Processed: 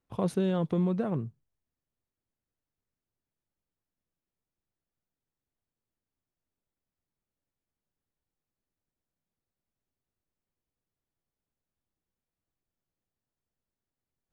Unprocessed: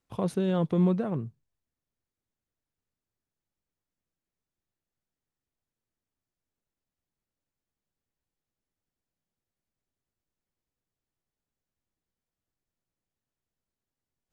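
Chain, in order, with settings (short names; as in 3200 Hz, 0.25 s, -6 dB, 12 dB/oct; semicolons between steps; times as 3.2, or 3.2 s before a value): 0.46–0.99 compressor 4:1, threshold -24 dBFS, peak gain reduction 5 dB; mismatched tape noise reduction decoder only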